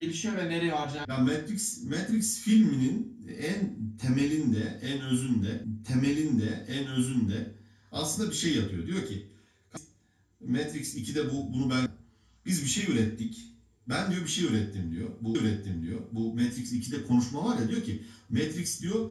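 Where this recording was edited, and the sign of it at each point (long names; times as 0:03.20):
0:01.05: cut off before it has died away
0:05.64: the same again, the last 1.86 s
0:09.77: cut off before it has died away
0:11.86: cut off before it has died away
0:15.35: the same again, the last 0.91 s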